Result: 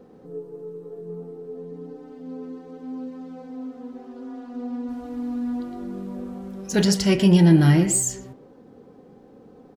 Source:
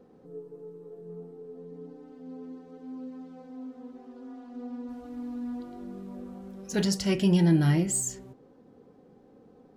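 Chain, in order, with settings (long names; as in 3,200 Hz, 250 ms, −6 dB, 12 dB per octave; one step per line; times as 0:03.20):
far-end echo of a speakerphone 120 ms, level −10 dB
level +7 dB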